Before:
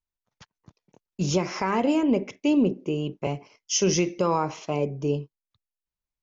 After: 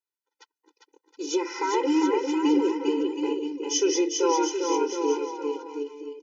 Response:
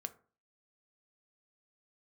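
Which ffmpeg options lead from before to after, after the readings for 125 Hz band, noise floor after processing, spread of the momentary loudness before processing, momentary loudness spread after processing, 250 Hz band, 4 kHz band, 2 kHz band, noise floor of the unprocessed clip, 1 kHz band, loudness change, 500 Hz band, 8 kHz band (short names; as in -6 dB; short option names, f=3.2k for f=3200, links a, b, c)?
under -30 dB, under -85 dBFS, 9 LU, 9 LU, 0.0 dB, +1.0 dB, -1.0 dB, under -85 dBFS, +1.5 dB, 0.0 dB, +2.0 dB, n/a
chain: -filter_complex "[0:a]asplit=2[a][b];[b]aecho=0:1:400|720|976|1181|1345:0.631|0.398|0.251|0.158|0.1[c];[a][c]amix=inputs=2:normalize=0,afftfilt=real='re*eq(mod(floor(b*sr/1024/260),2),1)':imag='im*eq(mod(floor(b*sr/1024/260),2),1)':win_size=1024:overlap=0.75,volume=1.5dB"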